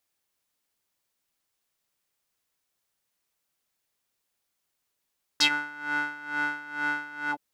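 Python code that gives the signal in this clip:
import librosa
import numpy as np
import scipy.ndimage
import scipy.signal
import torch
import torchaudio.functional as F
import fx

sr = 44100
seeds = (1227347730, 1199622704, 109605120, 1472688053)

y = fx.sub_patch_tremolo(sr, seeds[0], note=62, wave='square', wave2='saw', interval_st=12, detune_cents=16, level2_db=-14.0, sub_db=-9, noise_db=-30.0, kind='bandpass', cutoff_hz=490.0, q=4.0, env_oct=3.5, env_decay_s=0.11, env_sustain_pct=45, attack_ms=9.5, decay_s=0.08, sustain_db=-19.5, release_s=0.06, note_s=1.91, lfo_hz=2.2, tremolo_db=16.0)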